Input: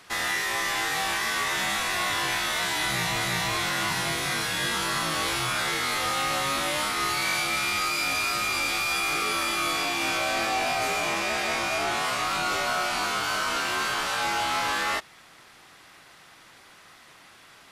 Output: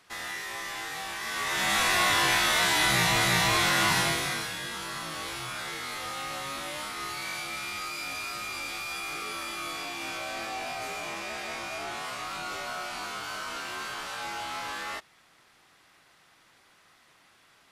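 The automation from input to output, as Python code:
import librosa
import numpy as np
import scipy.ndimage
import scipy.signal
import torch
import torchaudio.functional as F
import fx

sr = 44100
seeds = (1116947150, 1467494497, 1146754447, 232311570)

y = fx.gain(x, sr, db=fx.line((1.15, -9.0), (1.81, 3.0), (3.98, 3.0), (4.63, -9.0)))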